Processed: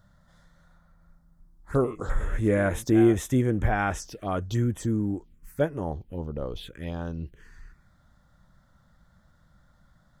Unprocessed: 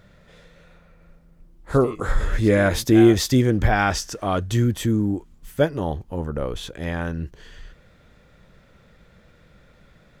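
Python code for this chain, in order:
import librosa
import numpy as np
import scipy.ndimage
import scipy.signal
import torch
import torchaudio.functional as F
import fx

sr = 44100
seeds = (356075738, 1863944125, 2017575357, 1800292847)

y = fx.env_phaser(x, sr, low_hz=400.0, high_hz=4600.0, full_db=-18.5)
y = y * 10.0 ** (-5.5 / 20.0)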